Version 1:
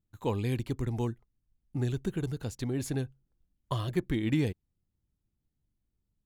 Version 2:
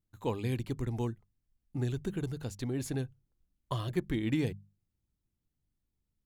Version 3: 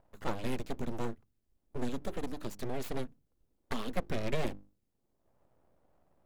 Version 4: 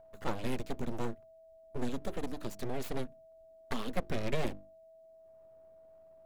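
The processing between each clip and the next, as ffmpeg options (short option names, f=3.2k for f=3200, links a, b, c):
-af "bandreject=f=50:t=h:w=6,bandreject=f=100:t=h:w=6,bandreject=f=150:t=h:w=6,bandreject=f=200:t=h:w=6,volume=-2dB"
-filter_complex "[0:a]acrossover=split=310|620|3000[a][b][c][d];[b]acompressor=mode=upward:threshold=-43dB:ratio=2.5[e];[a][e][c][d]amix=inputs=4:normalize=0,aeval=exprs='abs(val(0))':c=same,volume=1dB"
-af "aeval=exprs='val(0)+0.00178*sin(2*PI*650*n/s)':c=same"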